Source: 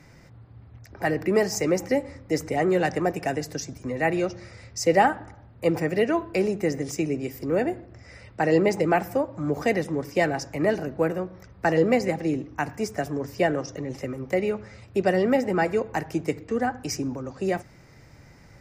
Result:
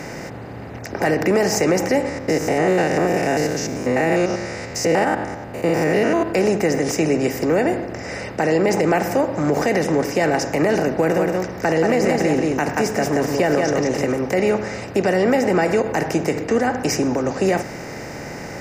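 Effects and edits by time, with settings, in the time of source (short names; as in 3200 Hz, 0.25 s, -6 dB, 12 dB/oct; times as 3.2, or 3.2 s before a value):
2.09–6.28 stepped spectrum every 0.1 s
10.97–14.12 echo 0.179 s -6.5 dB
whole clip: per-bin compression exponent 0.6; de-hum 45.85 Hz, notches 3; limiter -14 dBFS; gain +5 dB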